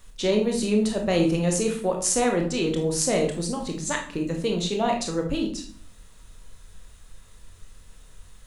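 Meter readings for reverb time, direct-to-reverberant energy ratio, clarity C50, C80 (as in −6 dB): 0.45 s, 2.0 dB, 7.0 dB, 12.0 dB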